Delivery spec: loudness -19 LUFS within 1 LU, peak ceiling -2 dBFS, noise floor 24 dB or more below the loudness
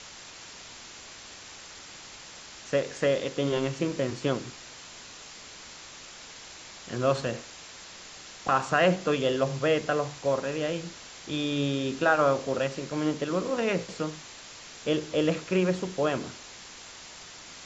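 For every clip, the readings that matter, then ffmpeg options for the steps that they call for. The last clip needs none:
noise floor -46 dBFS; noise floor target -52 dBFS; loudness -28.0 LUFS; peak level -10.0 dBFS; loudness target -19.0 LUFS
-> -af "afftdn=nr=6:nf=-46"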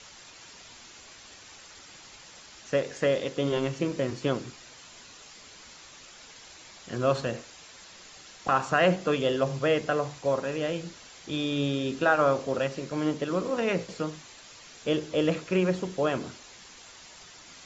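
noise floor -50 dBFS; noise floor target -52 dBFS
-> -af "afftdn=nr=6:nf=-50"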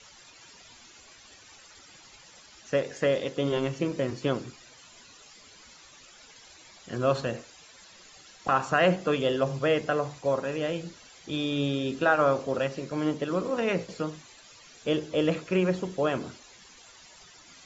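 noise floor -53 dBFS; loudness -28.0 LUFS; peak level -10.0 dBFS; loudness target -19.0 LUFS
-> -af "volume=2.82,alimiter=limit=0.794:level=0:latency=1"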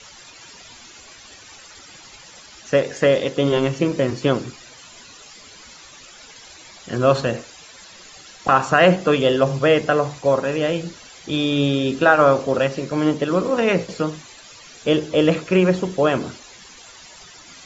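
loudness -19.0 LUFS; peak level -2.0 dBFS; noise floor -44 dBFS

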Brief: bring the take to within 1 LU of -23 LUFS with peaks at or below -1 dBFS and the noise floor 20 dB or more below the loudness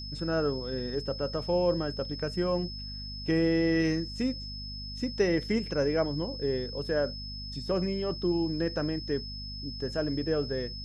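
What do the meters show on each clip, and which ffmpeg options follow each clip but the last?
hum 50 Hz; highest harmonic 250 Hz; hum level -39 dBFS; steady tone 5.2 kHz; tone level -40 dBFS; loudness -30.5 LUFS; peak level -14.5 dBFS; loudness target -23.0 LUFS
-> -af "bandreject=f=50:t=h:w=6,bandreject=f=100:t=h:w=6,bandreject=f=150:t=h:w=6,bandreject=f=200:t=h:w=6,bandreject=f=250:t=h:w=6"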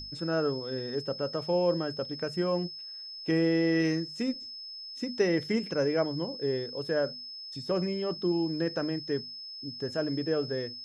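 hum not found; steady tone 5.2 kHz; tone level -40 dBFS
-> -af "bandreject=f=5200:w=30"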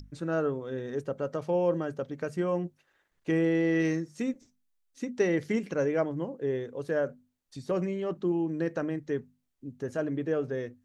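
steady tone not found; loudness -31.0 LUFS; peak level -14.0 dBFS; loudness target -23.0 LUFS
-> -af "volume=2.51"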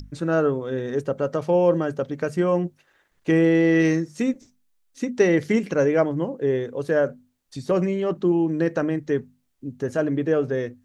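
loudness -23.0 LUFS; peak level -6.0 dBFS; noise floor -67 dBFS

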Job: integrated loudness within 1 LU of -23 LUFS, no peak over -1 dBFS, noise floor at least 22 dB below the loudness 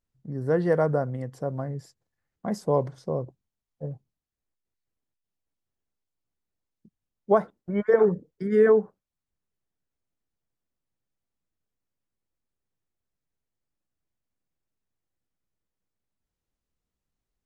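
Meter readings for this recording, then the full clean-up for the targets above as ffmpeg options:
loudness -25.0 LUFS; peak level -8.5 dBFS; loudness target -23.0 LUFS
-> -af "volume=1.26"

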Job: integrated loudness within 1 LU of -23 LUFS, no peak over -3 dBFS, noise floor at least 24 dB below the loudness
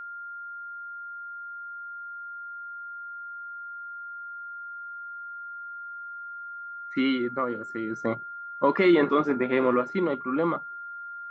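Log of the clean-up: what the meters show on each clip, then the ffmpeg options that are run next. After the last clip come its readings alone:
steady tone 1.4 kHz; tone level -36 dBFS; loudness -29.5 LUFS; peak level -10.5 dBFS; loudness target -23.0 LUFS
-> -af "bandreject=f=1400:w=30"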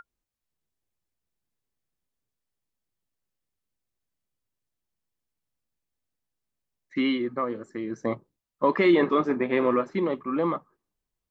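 steady tone not found; loudness -26.0 LUFS; peak level -10.5 dBFS; loudness target -23.0 LUFS
-> -af "volume=1.41"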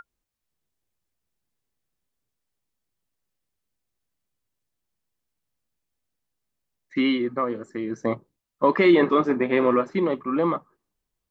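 loudness -23.0 LUFS; peak level -7.5 dBFS; noise floor -83 dBFS

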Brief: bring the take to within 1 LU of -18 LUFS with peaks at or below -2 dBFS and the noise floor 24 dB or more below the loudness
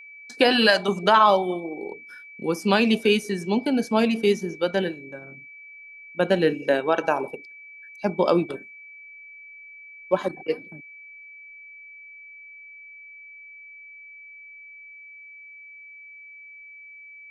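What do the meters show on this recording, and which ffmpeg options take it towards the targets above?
steady tone 2.3 kHz; tone level -42 dBFS; loudness -22.5 LUFS; peak level -4.5 dBFS; loudness target -18.0 LUFS
-> -af "bandreject=f=2300:w=30"
-af "volume=1.68,alimiter=limit=0.794:level=0:latency=1"

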